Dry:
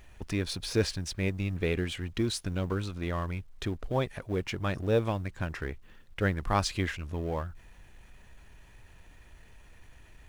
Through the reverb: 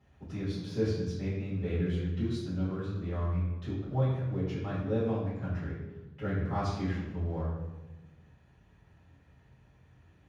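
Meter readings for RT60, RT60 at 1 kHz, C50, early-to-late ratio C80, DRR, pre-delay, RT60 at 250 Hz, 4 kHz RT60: 1.1 s, 1.0 s, 1.0 dB, 3.5 dB, -12.0 dB, 3 ms, 1.6 s, 0.80 s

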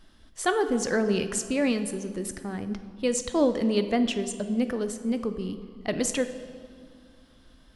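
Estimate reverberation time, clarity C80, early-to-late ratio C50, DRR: 2.3 s, 12.0 dB, 10.5 dB, 9.0 dB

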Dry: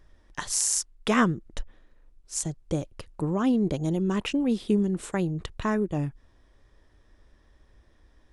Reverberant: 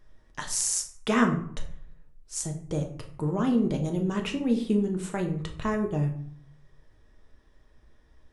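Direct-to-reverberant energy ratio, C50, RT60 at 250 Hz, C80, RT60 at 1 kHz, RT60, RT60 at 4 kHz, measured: 2.5 dB, 9.5 dB, 0.75 s, 13.5 dB, 0.60 s, 0.55 s, 0.35 s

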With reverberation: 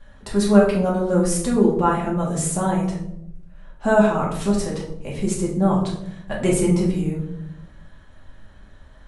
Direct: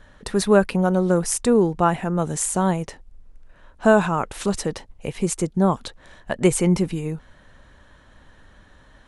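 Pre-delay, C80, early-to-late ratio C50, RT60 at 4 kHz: 4 ms, 8.5 dB, 5.0 dB, 0.45 s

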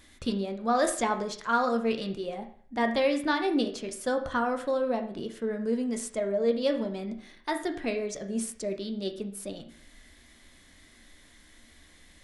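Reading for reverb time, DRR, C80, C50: 0.50 s, 5.0 dB, 13.5 dB, 10.5 dB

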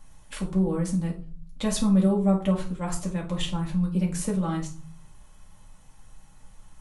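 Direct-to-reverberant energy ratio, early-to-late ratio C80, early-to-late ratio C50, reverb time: -2.0 dB, 16.0 dB, 9.5 dB, 0.45 s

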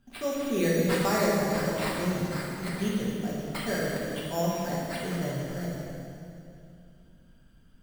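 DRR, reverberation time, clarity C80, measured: -6.0 dB, 2.5 s, 0.0 dB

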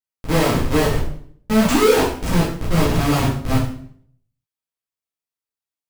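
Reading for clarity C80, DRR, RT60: 7.5 dB, -9.0 dB, 0.60 s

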